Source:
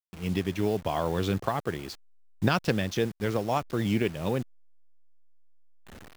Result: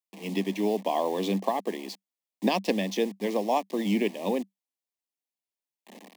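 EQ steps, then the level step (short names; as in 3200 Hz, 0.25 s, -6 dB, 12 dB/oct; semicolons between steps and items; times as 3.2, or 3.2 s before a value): rippled Chebyshev high-pass 190 Hz, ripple 3 dB; Butterworth band-stop 1400 Hz, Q 1.8; +3.5 dB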